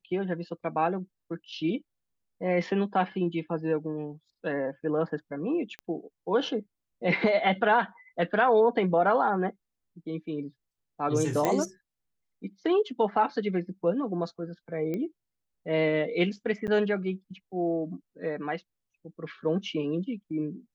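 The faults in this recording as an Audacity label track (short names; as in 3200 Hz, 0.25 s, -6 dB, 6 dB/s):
5.790000	5.790000	pop -25 dBFS
11.450000	11.450000	pop -12 dBFS
14.940000	14.940000	pop -21 dBFS
16.670000	16.680000	gap 8.7 ms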